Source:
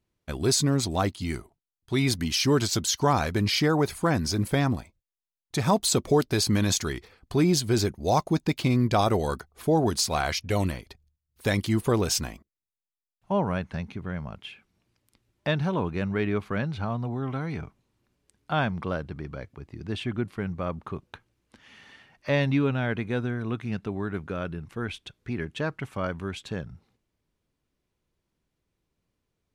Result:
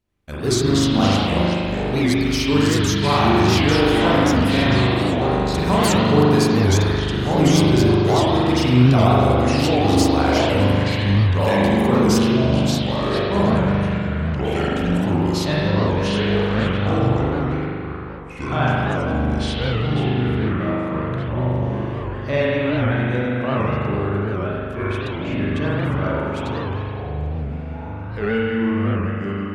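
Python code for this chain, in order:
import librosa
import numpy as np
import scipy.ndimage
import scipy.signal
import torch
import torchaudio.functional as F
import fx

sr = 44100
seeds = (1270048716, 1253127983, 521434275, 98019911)

y = fx.echo_pitch(x, sr, ms=99, semitones=-4, count=2, db_per_echo=-3.0)
y = fx.rev_spring(y, sr, rt60_s=2.4, pass_ms=(40,), chirp_ms=65, drr_db=-7.0)
y = fx.record_warp(y, sr, rpm=78.0, depth_cents=160.0)
y = y * librosa.db_to_amplitude(-1.0)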